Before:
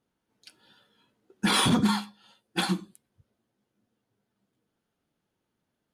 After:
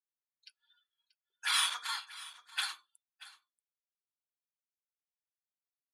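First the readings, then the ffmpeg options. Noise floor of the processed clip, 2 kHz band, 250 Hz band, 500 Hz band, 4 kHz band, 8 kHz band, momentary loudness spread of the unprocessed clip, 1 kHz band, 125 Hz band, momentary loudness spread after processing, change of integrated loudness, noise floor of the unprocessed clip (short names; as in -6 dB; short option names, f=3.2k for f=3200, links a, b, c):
under -85 dBFS, -4.0 dB, under -40 dB, under -30 dB, -4.0 dB, -4.0 dB, 12 LU, -9.5 dB, under -40 dB, 18 LU, -7.0 dB, -82 dBFS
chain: -filter_complex "[0:a]afftdn=nr=22:nf=-53,highpass=f=1.2k:w=0.5412,highpass=f=1.2k:w=1.3066,asplit=2[a][b];[b]aecho=0:1:634:0.126[c];[a][c]amix=inputs=2:normalize=0,volume=-4dB"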